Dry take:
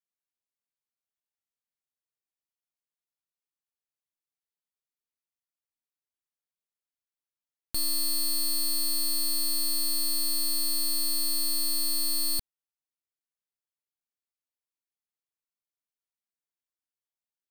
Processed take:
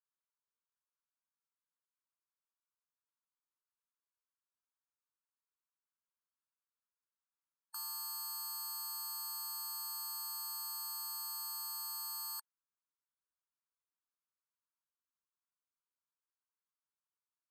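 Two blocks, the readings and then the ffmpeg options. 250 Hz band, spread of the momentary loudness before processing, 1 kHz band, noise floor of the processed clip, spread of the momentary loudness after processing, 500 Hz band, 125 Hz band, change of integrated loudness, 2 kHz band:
below −40 dB, 1 LU, +1.0 dB, below −85 dBFS, 1 LU, below −40 dB, can't be measured, −14.0 dB, −12.5 dB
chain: -af "asuperstop=centerf=3400:order=4:qfactor=0.59,adynamicsmooth=sensitivity=5.5:basefreq=6200,afftfilt=real='re*eq(mod(floor(b*sr/1024/870),2),1)':imag='im*eq(mod(floor(b*sr/1024/870),2),1)':win_size=1024:overlap=0.75,volume=3.5dB"

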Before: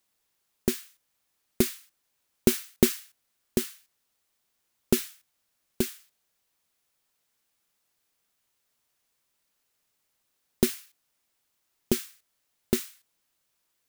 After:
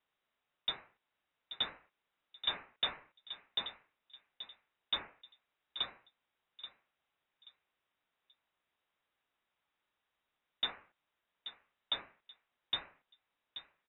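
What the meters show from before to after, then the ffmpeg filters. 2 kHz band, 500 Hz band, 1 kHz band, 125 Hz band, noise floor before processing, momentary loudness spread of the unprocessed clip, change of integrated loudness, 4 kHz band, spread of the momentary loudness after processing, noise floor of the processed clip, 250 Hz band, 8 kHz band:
−5.0 dB, −24.0 dB, −0.5 dB, −27.5 dB, −77 dBFS, 15 LU, −11.0 dB, +3.5 dB, 17 LU, below −85 dBFS, −32.0 dB, below −40 dB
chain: -filter_complex "[0:a]aemphasis=mode=production:type=75fm,aresample=11025,asoftclip=type=tanh:threshold=-21dB,aresample=44100,asplit=2[link_01][link_02];[link_02]adelay=831,lowpass=frequency=2100:poles=1,volume=-11dB,asplit=2[link_03][link_04];[link_04]adelay=831,lowpass=frequency=2100:poles=1,volume=0.29,asplit=2[link_05][link_06];[link_06]adelay=831,lowpass=frequency=2100:poles=1,volume=0.29[link_07];[link_01][link_03][link_05][link_07]amix=inputs=4:normalize=0,lowpass=frequency=3300:width_type=q:width=0.5098,lowpass=frequency=3300:width_type=q:width=0.6013,lowpass=frequency=3300:width_type=q:width=0.9,lowpass=frequency=3300:width_type=q:width=2.563,afreqshift=-3900,volume=-4.5dB"

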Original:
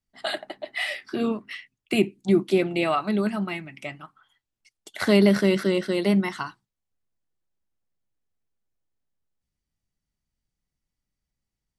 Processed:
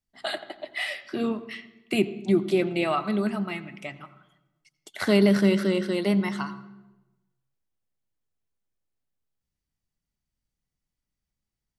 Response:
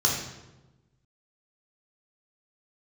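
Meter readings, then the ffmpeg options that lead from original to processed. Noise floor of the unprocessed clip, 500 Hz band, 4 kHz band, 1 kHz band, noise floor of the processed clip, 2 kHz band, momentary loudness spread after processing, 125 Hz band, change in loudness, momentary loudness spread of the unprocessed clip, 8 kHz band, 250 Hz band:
below −85 dBFS, −2.0 dB, −2.0 dB, −2.0 dB, below −85 dBFS, −2.0 dB, 18 LU, −1.0 dB, −1.5 dB, 17 LU, −2.0 dB, −1.0 dB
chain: -filter_complex "[0:a]asplit=2[link_01][link_02];[1:a]atrim=start_sample=2205,lowpass=3800,adelay=85[link_03];[link_02][link_03]afir=irnorm=-1:irlink=0,volume=-26.5dB[link_04];[link_01][link_04]amix=inputs=2:normalize=0,volume=-2dB"

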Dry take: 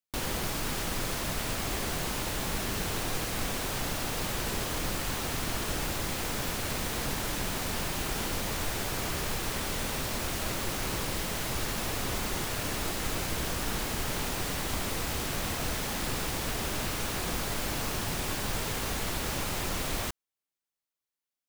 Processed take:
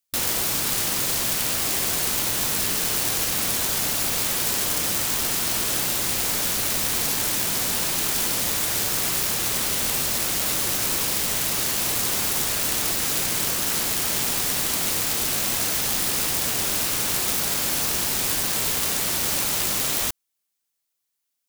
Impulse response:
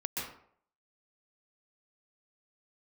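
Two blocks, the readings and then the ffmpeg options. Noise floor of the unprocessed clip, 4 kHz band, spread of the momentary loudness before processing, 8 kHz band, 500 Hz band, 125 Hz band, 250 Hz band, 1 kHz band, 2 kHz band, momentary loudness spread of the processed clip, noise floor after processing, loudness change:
below −85 dBFS, +9.5 dB, 0 LU, +13.0 dB, +2.5 dB, −0.5 dB, +2.0 dB, +3.5 dB, +5.5 dB, 0 LU, −79 dBFS, +10.5 dB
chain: -af "afftfilt=real='re*lt(hypot(re,im),0.141)':imag='im*lt(hypot(re,im),0.141)':win_size=1024:overlap=0.75,aeval=exprs='(mod(18.8*val(0)+1,2)-1)/18.8':channel_layout=same,highshelf=frequency=3400:gain=10,volume=3.5dB"

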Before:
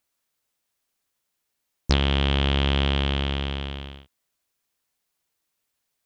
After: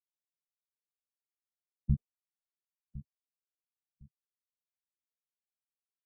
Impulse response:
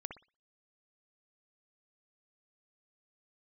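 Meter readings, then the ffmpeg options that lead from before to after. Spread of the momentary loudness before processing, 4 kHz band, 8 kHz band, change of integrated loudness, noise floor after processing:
15 LU, below −40 dB, can't be measured, −11.5 dB, below −85 dBFS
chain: -filter_complex "[0:a]equalizer=frequency=250:width_type=o:width=1:gain=-4,equalizer=frequency=500:width_type=o:width=1:gain=-4,equalizer=frequency=1000:width_type=o:width=1:gain=-11,equalizer=frequency=2000:width_type=o:width=1:gain=5,acrusher=bits=2:mix=0:aa=0.5,lowpass=frequency=3200:width=0.5412,lowpass=frequency=3200:width=1.3066,afftfilt=real='re*gte(hypot(re,im),0.282)':imag='im*gte(hypot(re,im),0.282)':win_size=1024:overlap=0.75,alimiter=limit=-21.5dB:level=0:latency=1:release=53,asplit=2[link_01][link_02];[link_02]aecho=0:1:1058|2116:0.15|0.0359[link_03];[link_01][link_03]amix=inputs=2:normalize=0,volume=4dB" -ar 22050 -c:a aac -b:a 16k

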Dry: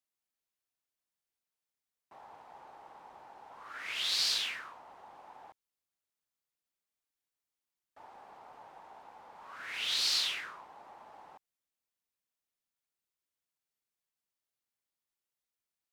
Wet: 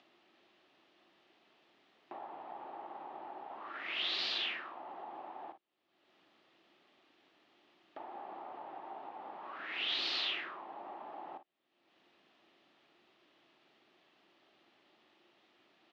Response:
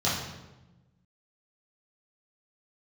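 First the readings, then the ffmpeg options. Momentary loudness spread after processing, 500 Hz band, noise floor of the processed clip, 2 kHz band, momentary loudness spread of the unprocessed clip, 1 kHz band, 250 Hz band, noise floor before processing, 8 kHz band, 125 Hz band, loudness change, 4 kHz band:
16 LU, +7.0 dB, −75 dBFS, −0.5 dB, 21 LU, +4.5 dB, +9.5 dB, below −85 dBFS, −22.0 dB, can't be measured, −8.5 dB, −4.0 dB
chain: -filter_complex "[0:a]tiltshelf=frequency=1300:gain=3,acompressor=mode=upward:threshold=-42dB:ratio=2.5,highpass=290,equalizer=frequency=340:width_type=q:width=4:gain=7,equalizer=frequency=480:width_type=q:width=4:gain=-8,equalizer=frequency=980:width_type=q:width=4:gain=-6,equalizer=frequency=1500:width_type=q:width=4:gain=-7,equalizer=frequency=2200:width_type=q:width=4:gain=-5,lowpass=frequency=3300:width=0.5412,lowpass=frequency=3300:width=1.3066,asplit=2[link_01][link_02];[link_02]aecho=0:1:40|54:0.237|0.2[link_03];[link_01][link_03]amix=inputs=2:normalize=0,volume=4.5dB"

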